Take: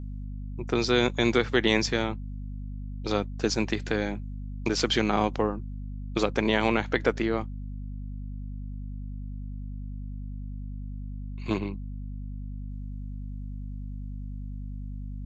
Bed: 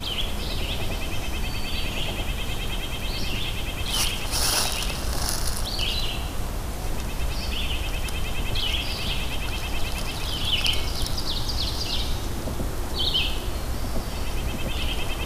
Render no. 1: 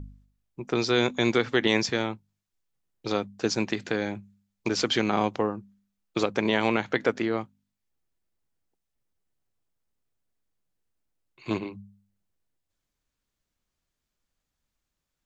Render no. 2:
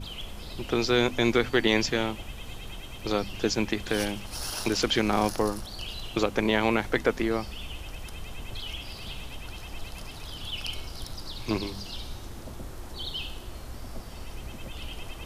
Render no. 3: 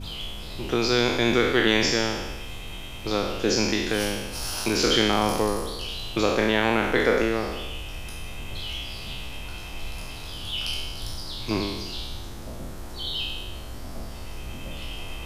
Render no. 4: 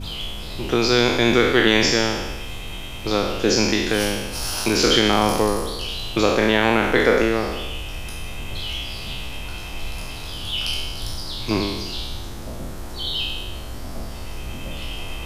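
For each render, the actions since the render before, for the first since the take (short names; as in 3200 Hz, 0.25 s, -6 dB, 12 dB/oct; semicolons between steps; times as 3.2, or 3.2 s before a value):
de-hum 50 Hz, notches 5
add bed -11.5 dB
spectral trails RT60 1.20 s
gain +4.5 dB; limiter -2 dBFS, peak gain reduction 2 dB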